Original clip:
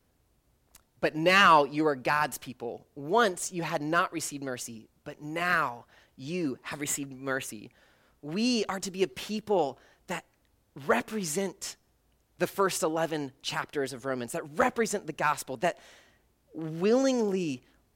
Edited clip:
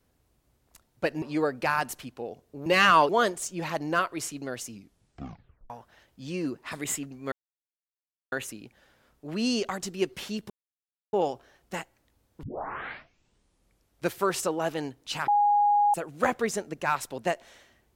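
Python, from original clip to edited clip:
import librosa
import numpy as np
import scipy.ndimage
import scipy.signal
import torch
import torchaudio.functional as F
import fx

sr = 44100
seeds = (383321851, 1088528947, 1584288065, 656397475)

y = fx.edit(x, sr, fx.move(start_s=1.22, length_s=0.43, to_s=3.09),
    fx.tape_stop(start_s=4.69, length_s=1.01),
    fx.insert_silence(at_s=7.32, length_s=1.0),
    fx.insert_silence(at_s=9.5, length_s=0.63),
    fx.tape_start(start_s=10.8, length_s=1.66),
    fx.bleep(start_s=13.65, length_s=0.66, hz=824.0, db=-18.5), tone=tone)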